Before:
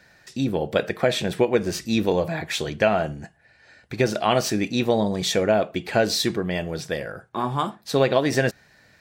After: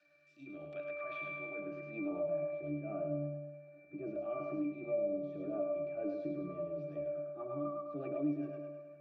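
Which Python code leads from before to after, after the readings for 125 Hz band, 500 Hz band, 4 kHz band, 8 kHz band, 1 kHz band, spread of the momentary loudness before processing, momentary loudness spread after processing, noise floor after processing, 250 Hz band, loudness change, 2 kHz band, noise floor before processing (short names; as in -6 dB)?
-18.5 dB, -15.0 dB, under -40 dB, under -40 dB, -22.0 dB, 9 LU, 10 LU, -61 dBFS, -14.5 dB, -16.0 dB, -19.5 dB, -57 dBFS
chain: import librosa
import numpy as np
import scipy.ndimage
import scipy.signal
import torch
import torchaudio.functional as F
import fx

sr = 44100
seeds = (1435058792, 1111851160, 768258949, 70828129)

y = scipy.signal.sosfilt(scipy.signal.butter(2, 190.0, 'highpass', fs=sr, output='sos'), x)
y = fx.transient(y, sr, attack_db=-10, sustain_db=5)
y = fx.filter_sweep_bandpass(y, sr, from_hz=6300.0, to_hz=490.0, start_s=0.51, end_s=2.48, q=0.78)
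y = fx.octave_resonator(y, sr, note='D', decay_s=0.71)
y = fx.rotary_switch(y, sr, hz=0.8, then_hz=8.0, switch_at_s=6.69)
y = fx.echo_thinned(y, sr, ms=104, feedback_pct=46, hz=270.0, wet_db=-3.5)
y = fx.band_squash(y, sr, depth_pct=70)
y = y * 10.0 ** (10.0 / 20.0)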